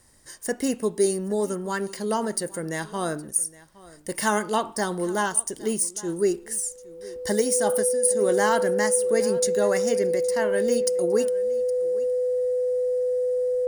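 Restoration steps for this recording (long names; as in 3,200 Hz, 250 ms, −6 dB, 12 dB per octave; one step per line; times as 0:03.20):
notch filter 500 Hz, Q 30
echo removal 815 ms −20.5 dB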